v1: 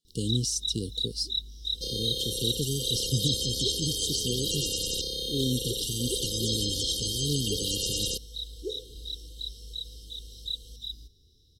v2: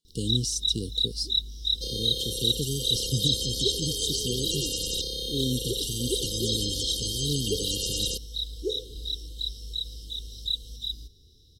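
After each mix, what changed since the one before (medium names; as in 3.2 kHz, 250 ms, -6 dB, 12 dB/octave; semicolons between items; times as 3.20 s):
first sound +5.0 dB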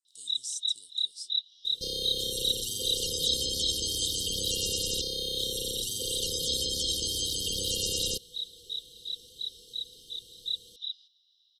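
speech: add band-pass filter 8 kHz, Q 3.1; first sound: add Butterworth band-pass 2.6 kHz, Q 1.3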